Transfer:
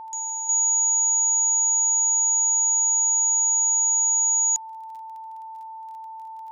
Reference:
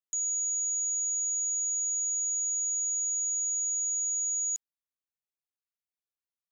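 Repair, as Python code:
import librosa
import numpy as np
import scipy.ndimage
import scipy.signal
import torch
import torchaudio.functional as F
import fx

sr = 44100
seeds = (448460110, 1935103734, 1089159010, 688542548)

y = fx.fix_declick_ar(x, sr, threshold=6.5)
y = fx.notch(y, sr, hz=890.0, q=30.0)
y = fx.gain(y, sr, db=fx.steps((0.0, 0.0), (0.49, -9.5)))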